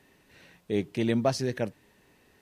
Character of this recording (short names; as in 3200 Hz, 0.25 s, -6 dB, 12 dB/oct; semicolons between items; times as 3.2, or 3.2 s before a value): noise floor -64 dBFS; spectral tilt -6.0 dB/oct